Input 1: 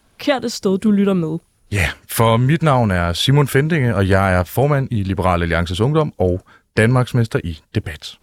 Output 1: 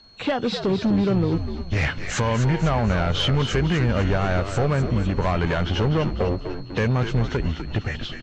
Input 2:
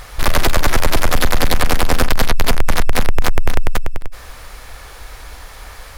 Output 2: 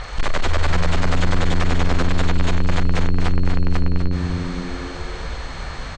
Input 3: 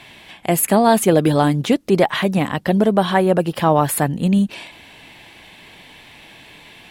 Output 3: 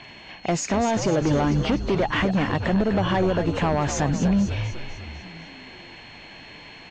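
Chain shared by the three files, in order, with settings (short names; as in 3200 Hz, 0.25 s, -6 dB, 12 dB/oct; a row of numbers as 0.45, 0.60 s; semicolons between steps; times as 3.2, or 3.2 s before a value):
nonlinear frequency compression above 2500 Hz 1.5:1; in parallel at +2 dB: limiter -8.5 dBFS; on the sum: compressor 8:1, threshold -9 dBFS; overloaded stage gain 10.5 dB; whine 4300 Hz -40 dBFS; air absorption 100 m; on a send: frequency-shifting echo 0.249 s, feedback 54%, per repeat -91 Hz, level -8 dB; on the sum: match loudness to -23 LUFS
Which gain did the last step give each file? -6.5, -2.5, -6.5 dB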